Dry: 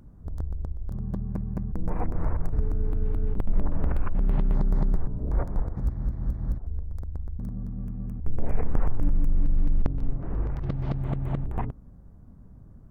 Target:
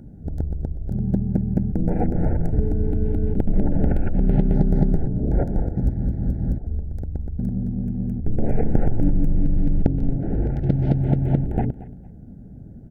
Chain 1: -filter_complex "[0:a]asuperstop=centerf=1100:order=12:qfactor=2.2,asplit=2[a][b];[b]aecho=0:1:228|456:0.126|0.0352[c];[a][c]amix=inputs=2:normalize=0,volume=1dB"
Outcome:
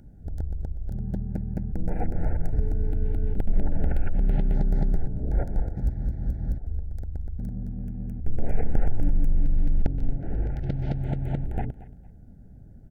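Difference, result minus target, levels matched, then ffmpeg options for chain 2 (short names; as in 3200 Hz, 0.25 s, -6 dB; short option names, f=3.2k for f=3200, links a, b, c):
250 Hz band -4.5 dB
-filter_complex "[0:a]asuperstop=centerf=1100:order=12:qfactor=2.2,equalizer=f=250:w=0.36:g=11.5,asplit=2[a][b];[b]aecho=0:1:228|456:0.126|0.0352[c];[a][c]amix=inputs=2:normalize=0,volume=1dB"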